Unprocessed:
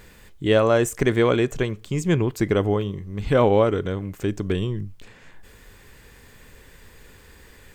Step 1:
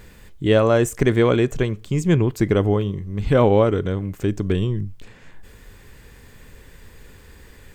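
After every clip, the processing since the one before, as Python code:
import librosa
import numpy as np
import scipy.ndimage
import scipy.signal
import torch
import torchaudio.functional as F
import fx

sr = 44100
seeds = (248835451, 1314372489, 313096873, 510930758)

y = fx.low_shelf(x, sr, hz=320.0, db=5.0)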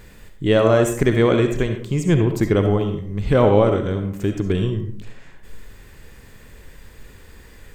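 y = fx.rev_freeverb(x, sr, rt60_s=0.56, hf_ratio=0.55, predelay_ms=25, drr_db=5.5)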